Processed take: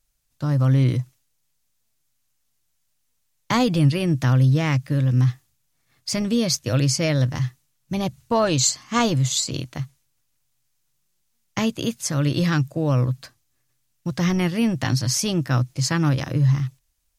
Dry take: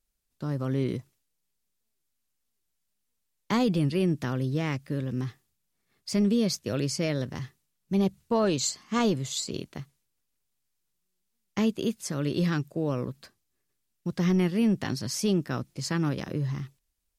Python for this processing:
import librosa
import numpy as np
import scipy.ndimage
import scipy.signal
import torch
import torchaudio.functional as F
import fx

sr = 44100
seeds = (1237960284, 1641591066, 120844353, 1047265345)

y = fx.graphic_eq_31(x, sr, hz=(125, 200, 400, 6300), db=(9, -10, -12, 3))
y = F.gain(torch.from_numpy(y), 8.0).numpy()